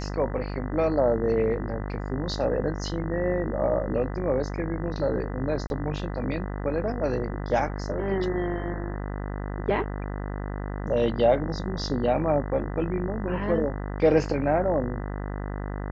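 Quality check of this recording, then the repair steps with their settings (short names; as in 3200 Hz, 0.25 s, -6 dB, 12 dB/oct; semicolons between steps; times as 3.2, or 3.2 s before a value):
buzz 50 Hz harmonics 40 -32 dBFS
5.67–5.7 gap 31 ms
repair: de-hum 50 Hz, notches 40; interpolate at 5.67, 31 ms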